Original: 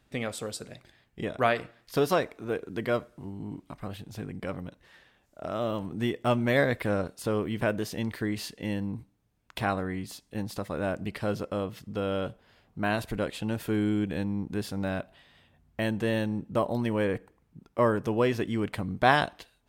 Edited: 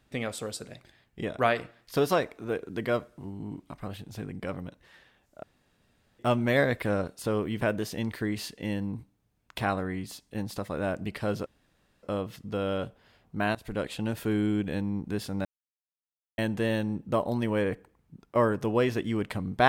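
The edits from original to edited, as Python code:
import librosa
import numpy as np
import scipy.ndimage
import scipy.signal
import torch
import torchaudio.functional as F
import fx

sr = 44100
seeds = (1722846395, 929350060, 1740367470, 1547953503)

y = fx.edit(x, sr, fx.room_tone_fill(start_s=5.43, length_s=0.76),
    fx.insert_room_tone(at_s=11.46, length_s=0.57),
    fx.fade_in_from(start_s=12.98, length_s=0.36, curve='qsin', floor_db=-21.0),
    fx.silence(start_s=14.88, length_s=0.93), tone=tone)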